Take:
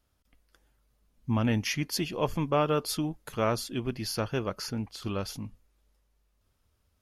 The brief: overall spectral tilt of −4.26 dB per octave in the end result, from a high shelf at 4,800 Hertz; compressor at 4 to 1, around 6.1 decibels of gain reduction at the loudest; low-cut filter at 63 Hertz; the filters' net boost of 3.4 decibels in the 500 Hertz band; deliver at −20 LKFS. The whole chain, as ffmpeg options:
ffmpeg -i in.wav -af "highpass=63,equalizer=frequency=500:width_type=o:gain=4,highshelf=frequency=4800:gain=6,acompressor=threshold=-26dB:ratio=4,volume=12dB" out.wav

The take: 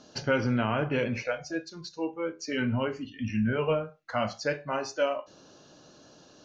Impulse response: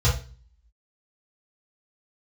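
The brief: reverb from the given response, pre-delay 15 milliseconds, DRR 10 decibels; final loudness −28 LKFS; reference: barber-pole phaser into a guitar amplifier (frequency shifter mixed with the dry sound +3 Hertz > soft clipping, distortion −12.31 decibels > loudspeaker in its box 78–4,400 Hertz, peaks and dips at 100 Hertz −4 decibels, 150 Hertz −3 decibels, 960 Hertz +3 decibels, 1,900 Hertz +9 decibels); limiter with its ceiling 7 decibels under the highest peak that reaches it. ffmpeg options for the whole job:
-filter_complex "[0:a]alimiter=limit=-21dB:level=0:latency=1,asplit=2[link_01][link_02];[1:a]atrim=start_sample=2205,adelay=15[link_03];[link_02][link_03]afir=irnorm=-1:irlink=0,volume=-23.5dB[link_04];[link_01][link_04]amix=inputs=2:normalize=0,asplit=2[link_05][link_06];[link_06]afreqshift=3[link_07];[link_05][link_07]amix=inputs=2:normalize=1,asoftclip=threshold=-22dB,highpass=78,equalizer=frequency=100:width_type=q:width=4:gain=-4,equalizer=frequency=150:width_type=q:width=4:gain=-3,equalizer=frequency=960:width_type=q:width=4:gain=3,equalizer=frequency=1900:width_type=q:width=4:gain=9,lowpass=frequency=4400:width=0.5412,lowpass=frequency=4400:width=1.3066,volume=5.5dB"

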